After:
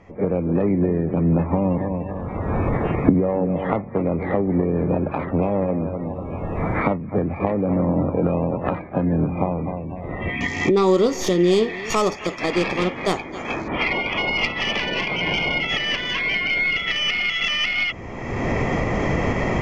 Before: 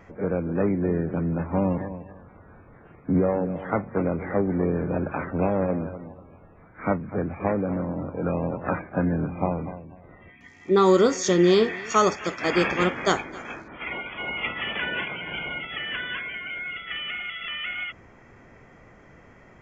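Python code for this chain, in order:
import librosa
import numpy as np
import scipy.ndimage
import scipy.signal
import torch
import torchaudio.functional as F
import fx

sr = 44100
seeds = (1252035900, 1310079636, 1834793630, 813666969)

y = fx.tracing_dist(x, sr, depth_ms=0.12)
y = fx.recorder_agc(y, sr, target_db=-12.5, rise_db_per_s=29.0, max_gain_db=30)
y = scipy.signal.sosfilt(scipy.signal.butter(2, 6700.0, 'lowpass', fs=sr, output='sos'), y)
y = fx.peak_eq(y, sr, hz=1500.0, db=-14.5, octaves=0.31)
y = y * librosa.db_to_amplitude(1.0)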